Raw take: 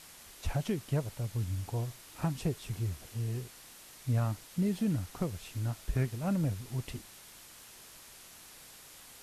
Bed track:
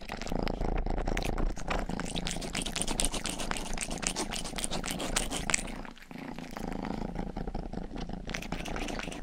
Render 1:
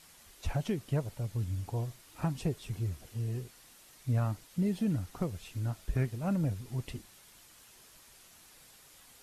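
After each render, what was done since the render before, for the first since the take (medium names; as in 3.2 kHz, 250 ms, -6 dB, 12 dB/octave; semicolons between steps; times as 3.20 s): noise reduction 6 dB, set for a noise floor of -53 dBFS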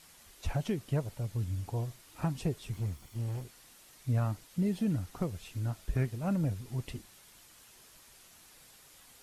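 2.74–3.44 s: comb filter that takes the minimum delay 0.9 ms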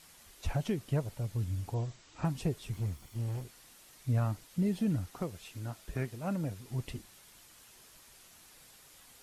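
1.74–2.25 s: brick-wall FIR low-pass 8.1 kHz; 5.08–6.71 s: bass shelf 140 Hz -11 dB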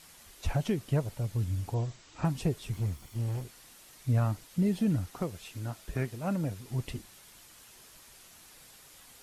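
trim +3 dB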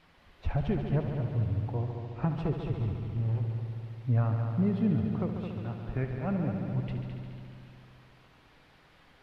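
distance through air 370 m; multi-head delay 71 ms, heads all three, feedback 69%, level -11 dB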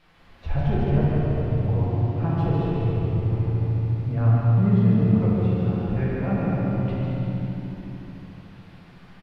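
delay 153 ms -5 dB; simulated room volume 140 m³, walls hard, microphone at 0.77 m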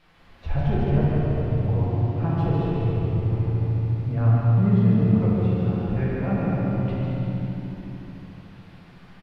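no audible change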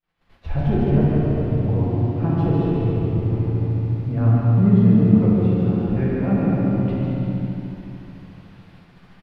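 expander -44 dBFS; dynamic bell 270 Hz, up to +8 dB, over -35 dBFS, Q 1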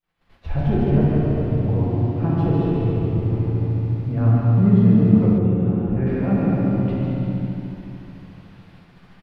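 5.38–6.07 s: distance through air 470 m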